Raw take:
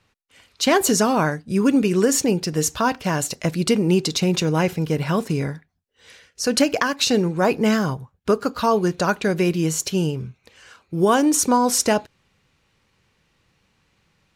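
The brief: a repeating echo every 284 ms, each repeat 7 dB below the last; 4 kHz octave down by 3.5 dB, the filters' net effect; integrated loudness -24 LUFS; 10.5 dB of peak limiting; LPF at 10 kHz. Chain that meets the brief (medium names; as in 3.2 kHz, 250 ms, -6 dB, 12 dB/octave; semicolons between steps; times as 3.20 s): low-pass 10 kHz; peaking EQ 4 kHz -4.5 dB; peak limiter -15 dBFS; feedback delay 284 ms, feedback 45%, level -7 dB; trim +0.5 dB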